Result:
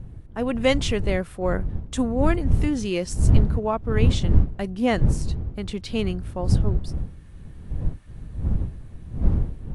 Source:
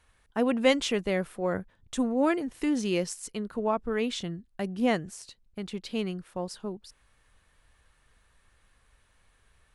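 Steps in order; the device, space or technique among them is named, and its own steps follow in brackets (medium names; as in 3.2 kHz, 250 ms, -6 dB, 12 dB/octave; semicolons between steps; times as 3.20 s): smartphone video outdoors (wind noise 87 Hz -26 dBFS; level rider gain up to 8.5 dB; trim -3 dB; AAC 64 kbps 24 kHz)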